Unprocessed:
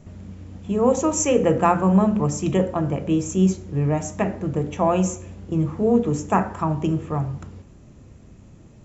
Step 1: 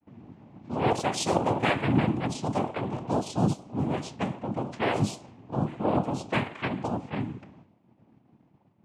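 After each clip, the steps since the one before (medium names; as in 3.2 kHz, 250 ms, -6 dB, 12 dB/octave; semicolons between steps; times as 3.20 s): expander -40 dBFS; noise-vocoded speech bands 4; level-controlled noise filter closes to 2.3 kHz, open at -16.5 dBFS; trim -7 dB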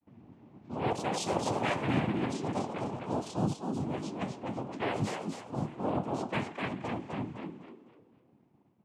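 frequency-shifting echo 253 ms, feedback 33%, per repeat +60 Hz, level -5 dB; trim -6.5 dB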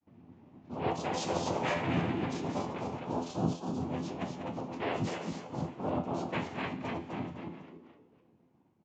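chunks repeated in reverse 144 ms, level -7 dB; feedback comb 85 Hz, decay 0.29 s, harmonics all, mix 70%; resampled via 16 kHz; trim +4 dB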